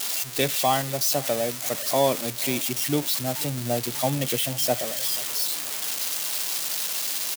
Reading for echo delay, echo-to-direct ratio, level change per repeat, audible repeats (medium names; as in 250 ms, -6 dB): 487 ms, -20.0 dB, -7.0 dB, 2